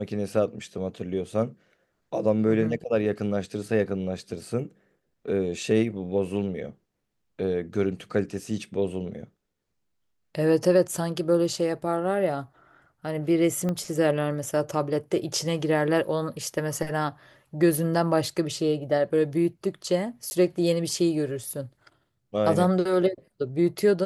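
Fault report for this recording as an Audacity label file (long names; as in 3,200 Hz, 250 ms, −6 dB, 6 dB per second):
13.690000	13.690000	click −17 dBFS
20.300000	20.310000	drop-out 10 ms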